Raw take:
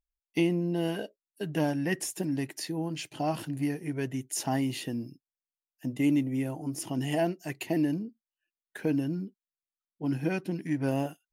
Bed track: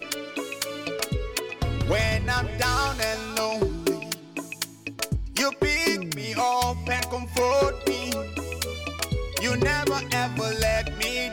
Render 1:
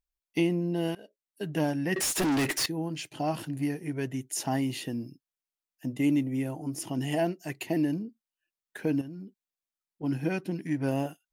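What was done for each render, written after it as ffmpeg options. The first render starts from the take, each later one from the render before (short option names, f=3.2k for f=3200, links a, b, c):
-filter_complex "[0:a]asettb=1/sr,asplit=3[a][b][c];[a]atrim=end=1.964[d];[b]atrim=start=1.96:end=2.66,asetpts=PTS-STARTPTS,afade=t=in:d=0.004:c=qsin,afade=t=out:st=0.696:d=0.004:c=qsin,asplit=2[e][f];[f]highpass=f=720:p=1,volume=33dB,asoftclip=type=tanh:threshold=-19.5dB[g];[e][g]amix=inputs=2:normalize=0,lowpass=f=6.7k:p=1,volume=-6dB[h];[c]atrim=start=2.656[i];[d][h]acrossfade=d=0.004:c1=hsin:c2=qsin[j];[j][i]acrossfade=d=0.004:c1=qsin:c2=hsin,asettb=1/sr,asplit=3[k][l][m];[k]atrim=end=9.014[n];[l]atrim=start=9.01:end=10.03,asetpts=PTS-STARTPTS,afade=t=in:d=0.004:c=qsin,afade=t=out:st=1.016:d=0.004:c=qsin,acompressor=threshold=-38dB:ratio=6:attack=3.2:release=140:knee=1:detection=peak[o];[m]atrim=start=10.026[p];[n][o]acrossfade=d=0.004:c1=hsin:c2=qsin[q];[q][p]acrossfade=d=0.004:c1=qsin:c2=hsin,asplit=2[r][s];[r]atrim=end=0.95,asetpts=PTS-STARTPTS,afade=t=out:st=0.946:d=0.004:c=hsin:silence=0.0891251[t];[s]atrim=start=0.95,asetpts=PTS-STARTPTS,afade=t=in:d=0.49:silence=0.0891251[u];[t][u]concat=n=2:v=0:a=1"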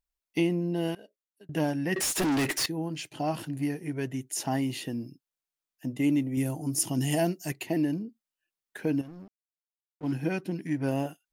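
-filter_complex "[0:a]asettb=1/sr,asplit=3[a][b][c];[a]atrim=end=6.374[d];[b]atrim=start=6.37:end=7.52,asetpts=PTS-STARTPTS,afade=t=in:d=0.004:c=qsin,afade=t=out:st=1.146:d=0.004:c=qsin,bass=f=250:g=5,treble=f=4k:g=11[e];[c]atrim=start=7.516[f];[d][e]acrossfade=d=0.004:c1=hsin:c2=qsin[g];[g][f]acrossfade=d=0.004:c1=qsin:c2=hsin,asettb=1/sr,asplit=3[h][i][j];[h]atrim=end=9.034[k];[i]atrim=start=9.03:end=10.13,asetpts=PTS-STARTPTS,afade=t=in:d=0.004:c=qsin,afade=t=out:st=1.096:d=0.004:c=qsin,aeval=exprs='sgn(val(0))*max(abs(val(0))-0.00398,0)':c=same[l];[j]atrim=start=10.126[m];[k][l]acrossfade=d=0.004:c1=hsin:c2=qsin[n];[n][m]acrossfade=d=0.004:c1=qsin:c2=hsin,asplit=2[o][p];[o]atrim=end=1.49,asetpts=PTS-STARTPTS,afade=t=out:st=0.95:d=0.54[q];[p]atrim=start=1.49,asetpts=PTS-STARTPTS,afade=t=in:d=0.004:c=hsin[r];[q][r]concat=n=2:v=0:a=1"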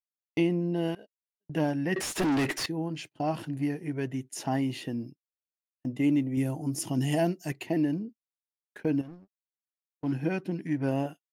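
-af "agate=range=-39dB:threshold=-42dB:ratio=16:detection=peak,aemphasis=mode=reproduction:type=cd"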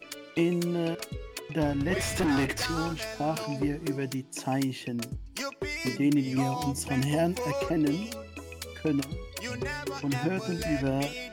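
-filter_complex "[1:a]volume=-10.5dB[a];[0:a][a]amix=inputs=2:normalize=0"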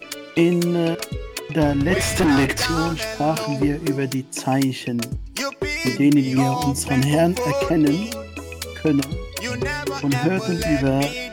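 -af "volume=9dB"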